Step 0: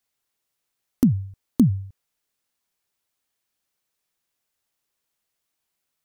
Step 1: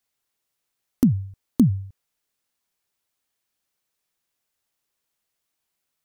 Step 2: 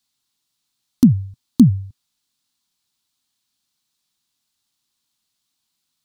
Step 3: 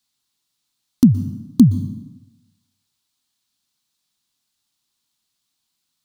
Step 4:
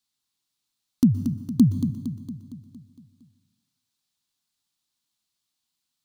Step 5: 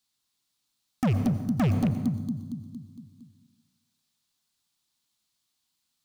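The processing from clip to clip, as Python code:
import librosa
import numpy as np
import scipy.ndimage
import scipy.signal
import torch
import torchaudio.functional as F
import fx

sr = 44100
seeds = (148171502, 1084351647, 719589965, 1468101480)

y1 = x
y2 = fx.graphic_eq(y1, sr, hz=(125, 250, 500, 1000, 2000, 4000, 8000), db=(5, 8, -10, 4, -4, 11, 4))
y3 = fx.rev_plate(y2, sr, seeds[0], rt60_s=1.0, hf_ratio=0.8, predelay_ms=110, drr_db=13.5)
y4 = fx.echo_feedback(y3, sr, ms=230, feedback_pct=56, wet_db=-9)
y4 = y4 * 10.0 ** (-6.5 / 20.0)
y5 = fx.rattle_buzz(y4, sr, strikes_db=-21.0, level_db=-27.0)
y5 = np.clip(y5, -10.0 ** (-23.5 / 20.0), 10.0 ** (-23.5 / 20.0))
y5 = fx.rev_plate(y5, sr, seeds[1], rt60_s=1.2, hf_ratio=0.5, predelay_ms=75, drr_db=9.0)
y5 = y5 * 10.0 ** (2.5 / 20.0)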